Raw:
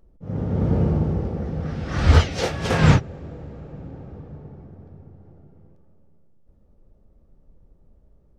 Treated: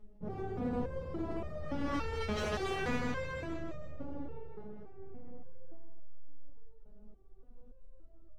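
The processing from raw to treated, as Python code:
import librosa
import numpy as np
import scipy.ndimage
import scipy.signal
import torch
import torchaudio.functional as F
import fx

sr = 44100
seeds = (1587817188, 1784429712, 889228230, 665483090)

p1 = fx.low_shelf(x, sr, hz=410.0, db=-9.0, at=(4.41, 4.98))
p2 = fx.echo_feedback(p1, sr, ms=157, feedback_pct=52, wet_db=-6.0)
p3 = fx.over_compress(p2, sr, threshold_db=-27.0, ratio=-1.0)
p4 = p2 + (p3 * 10.0 ** (2.0 / 20.0))
p5 = fx.high_shelf(p4, sr, hz=3500.0, db=-10.0)
p6 = np.clip(10.0 ** (15.5 / 20.0) * p5, -1.0, 1.0) / 10.0 ** (15.5 / 20.0)
p7 = fx.resonator_held(p6, sr, hz=3.5, low_hz=210.0, high_hz=610.0)
y = p7 * 10.0 ** (2.5 / 20.0)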